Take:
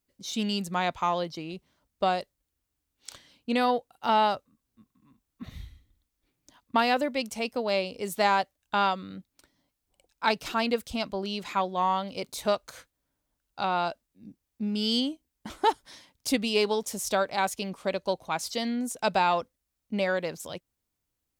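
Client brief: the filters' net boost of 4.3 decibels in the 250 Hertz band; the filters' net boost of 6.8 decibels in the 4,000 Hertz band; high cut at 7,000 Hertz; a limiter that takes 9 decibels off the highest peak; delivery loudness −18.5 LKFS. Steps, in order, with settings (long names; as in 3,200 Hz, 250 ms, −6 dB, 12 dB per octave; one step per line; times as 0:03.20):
low-pass filter 7,000 Hz
parametric band 250 Hz +5 dB
parametric band 4,000 Hz +9 dB
level +10 dB
brickwall limiter −6 dBFS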